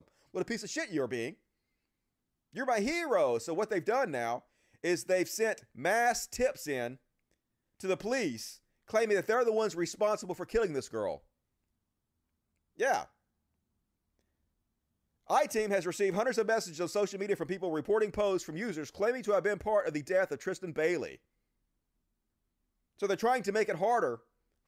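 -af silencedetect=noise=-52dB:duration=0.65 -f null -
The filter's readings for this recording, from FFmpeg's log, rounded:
silence_start: 1.34
silence_end: 2.53 | silence_duration: 1.19
silence_start: 6.96
silence_end: 7.80 | silence_duration: 0.84
silence_start: 11.18
silence_end: 12.79 | silence_duration: 1.61
silence_start: 13.06
silence_end: 15.28 | silence_duration: 2.22
silence_start: 21.16
silence_end: 22.98 | silence_duration: 1.82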